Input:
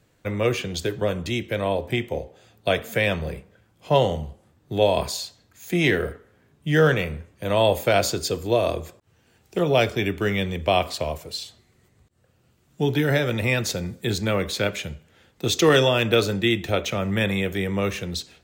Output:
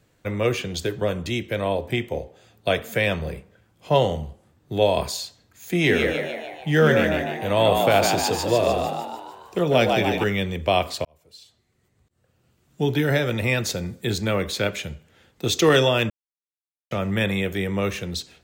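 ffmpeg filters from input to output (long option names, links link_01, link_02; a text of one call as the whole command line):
ffmpeg -i in.wav -filter_complex "[0:a]asettb=1/sr,asplit=3[link_01][link_02][link_03];[link_01]atrim=end=5.724[link_04];[link_02]atrim=start=5.72:end=10.24,asetpts=PTS-STARTPTS,afade=type=in:duration=0.004:curve=qsin,afade=type=out:start_time=4.516:duration=0.004:curve=qsin,asplit=8[link_05][link_06][link_07][link_08][link_09][link_10][link_11][link_12];[link_06]adelay=149,afreqshift=75,volume=-4dB[link_13];[link_07]adelay=298,afreqshift=150,volume=-9.2dB[link_14];[link_08]adelay=447,afreqshift=225,volume=-14.4dB[link_15];[link_09]adelay=596,afreqshift=300,volume=-19.6dB[link_16];[link_10]adelay=745,afreqshift=375,volume=-24.8dB[link_17];[link_11]adelay=894,afreqshift=450,volume=-30dB[link_18];[link_12]adelay=1043,afreqshift=525,volume=-35.2dB[link_19];[link_05][link_13][link_14][link_15][link_16][link_17][link_18][link_19]amix=inputs=8:normalize=0,atrim=end_sample=199332[link_20];[link_03]atrim=start=10.236[link_21];[link_04][link_20]acrossfade=duration=0.004:curve1=hsin:curve2=qsin[link_22];[link_22][link_21]acrossfade=duration=0.004:curve1=qsin:curve2=hsin,asplit=4[link_23][link_24][link_25][link_26];[link_23]atrim=end=11.05,asetpts=PTS-STARTPTS,afade=type=out:start_time=11.046:duration=0.004:curve=hsin[link_27];[link_24]atrim=start=11.05:end=16.1,asetpts=PTS-STARTPTS,afade=type=in:duration=1.76,afade=type=out:start_time=5.046:duration=0.004:curve=hsin[link_28];[link_25]atrim=start=16.1:end=16.91,asetpts=PTS-STARTPTS,volume=0[link_29];[link_26]atrim=start=16.91,asetpts=PTS-STARTPTS,afade=type=in:duration=0.004:curve=hsin[link_30];[link_27][link_28][link_29][link_30]concat=n=4:v=0:a=1" out.wav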